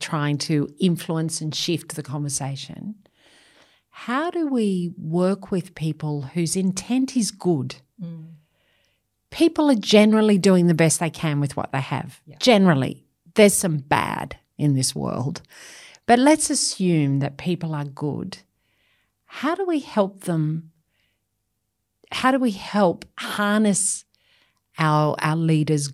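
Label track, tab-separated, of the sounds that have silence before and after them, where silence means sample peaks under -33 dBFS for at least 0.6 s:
3.970000	8.200000	sound
9.320000	18.350000	sound
19.340000	20.600000	sound
22.120000	24.000000	sound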